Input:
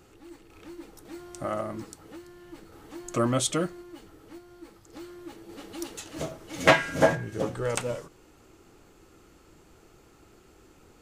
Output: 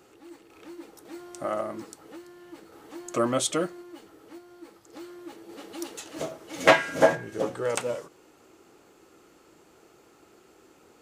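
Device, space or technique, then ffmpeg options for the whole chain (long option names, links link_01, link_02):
filter by subtraction: -filter_complex "[0:a]asplit=2[link_01][link_02];[link_02]lowpass=450,volume=-1[link_03];[link_01][link_03]amix=inputs=2:normalize=0"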